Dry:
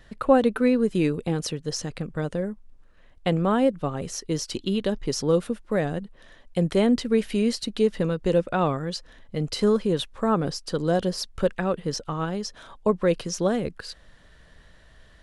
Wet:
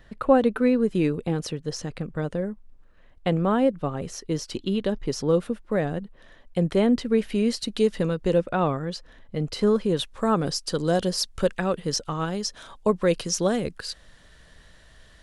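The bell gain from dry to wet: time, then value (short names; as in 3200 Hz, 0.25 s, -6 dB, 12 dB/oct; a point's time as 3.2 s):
bell 9200 Hz 2.5 oct
7.32 s -5 dB
7.83 s +5 dB
8.62 s -5 dB
9.64 s -5 dB
10.26 s +6.5 dB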